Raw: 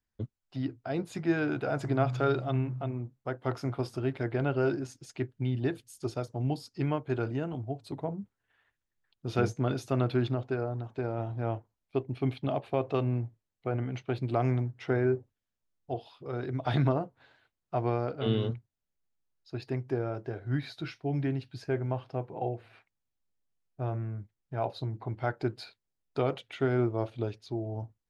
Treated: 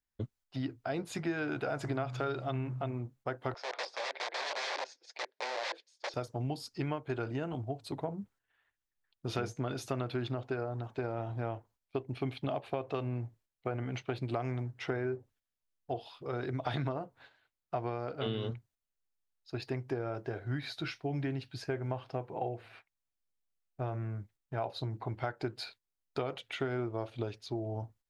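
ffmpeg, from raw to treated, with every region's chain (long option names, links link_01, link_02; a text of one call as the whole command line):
ffmpeg -i in.wav -filter_complex "[0:a]asettb=1/sr,asplit=3[link_01][link_02][link_03];[link_01]atrim=end=3.544[link_04];[link_02]atrim=start=3.54:end=6.14,asetpts=PTS-STARTPTS,afade=type=in:duration=0.004:curve=qsin,afade=type=out:start_time=2.596:duration=0.004:curve=qsin,aeval=exprs='(mod(33.5*val(0)+1,2)-1)/33.5':channel_layout=same,highpass=frequency=500:width=0.5412,highpass=frequency=500:width=1.3066,equalizer=frequency=530:width_type=q:width=4:gain=4,equalizer=frequency=1300:width_type=q:width=4:gain=-8,equalizer=frequency=2900:width_type=q:width=4:gain=-7,lowpass=frequency=5000:width=0.5412,lowpass=frequency=5000:width=1.3066[link_05];[link_03]atrim=start=6.136[link_06];[link_04][link_05]acrossfade=duration=0.004:curve1=hsin:curve2=qsin[link_07];[link_07][link_06]acrossfade=duration=0.004:curve1=qsin:curve2=hsin,agate=range=-8dB:threshold=-58dB:ratio=16:detection=peak,equalizer=frequency=150:width=0.32:gain=-5.5,acompressor=threshold=-35dB:ratio=6,volume=4dB" out.wav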